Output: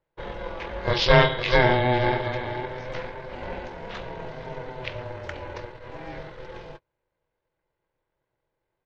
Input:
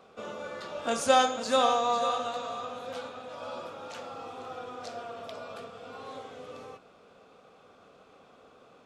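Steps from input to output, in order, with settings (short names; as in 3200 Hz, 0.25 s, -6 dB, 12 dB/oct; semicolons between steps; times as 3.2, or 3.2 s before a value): vibrato 8.6 Hz 6.7 cents; gate -45 dBFS, range -29 dB; high shelf 2100 Hz +8 dB; pitch shift -11.5 st; ring modulator 250 Hz; gain +7.5 dB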